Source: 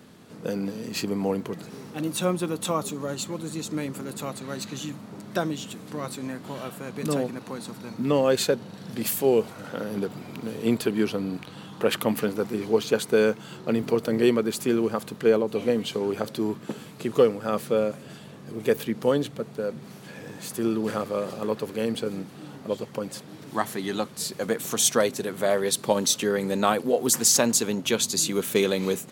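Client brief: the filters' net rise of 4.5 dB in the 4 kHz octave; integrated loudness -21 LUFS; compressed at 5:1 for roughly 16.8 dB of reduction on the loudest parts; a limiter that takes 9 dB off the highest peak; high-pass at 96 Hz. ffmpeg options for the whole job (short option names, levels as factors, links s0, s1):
-af "highpass=96,equalizer=f=4000:t=o:g=5.5,acompressor=threshold=0.02:ratio=5,volume=7.94,alimiter=limit=0.316:level=0:latency=1"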